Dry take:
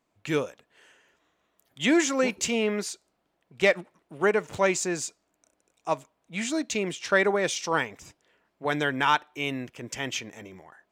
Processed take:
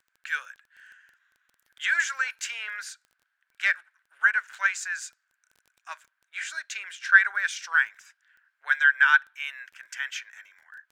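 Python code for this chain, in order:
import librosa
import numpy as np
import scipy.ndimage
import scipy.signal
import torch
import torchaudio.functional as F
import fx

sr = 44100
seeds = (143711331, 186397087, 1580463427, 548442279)

y = fx.ladder_highpass(x, sr, hz=1500.0, resonance_pct=85)
y = fx.dmg_crackle(y, sr, seeds[0], per_s=12.0, level_db=-50.0)
y = F.gain(torch.from_numpy(y), 7.0).numpy()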